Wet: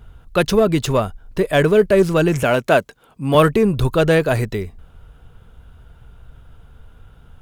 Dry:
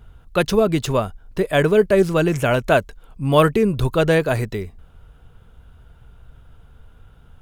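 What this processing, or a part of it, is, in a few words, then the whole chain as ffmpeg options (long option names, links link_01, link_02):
parallel distortion: -filter_complex "[0:a]asettb=1/sr,asplit=3[link_01][link_02][link_03];[link_01]atrim=end=2.434[link_04];[link_02]atrim=start=2.43:end=3.35,asetpts=PTS-STARTPTS,afade=type=in:duration=0.004:curve=qsin,afade=type=out:start_time=0.916:duration=0.004:curve=qsin,highpass=160[link_05];[link_03]atrim=start=3.346[link_06];[link_04][link_05]acrossfade=duration=0.004:curve1=hsin:curve2=qsin[link_07];[link_07][link_06]acrossfade=duration=0.004:curve1=qsin:curve2=hsin,asplit=2[link_08][link_09];[link_09]asoftclip=type=hard:threshold=-16dB,volume=-9dB[link_10];[link_08][link_10]amix=inputs=2:normalize=0"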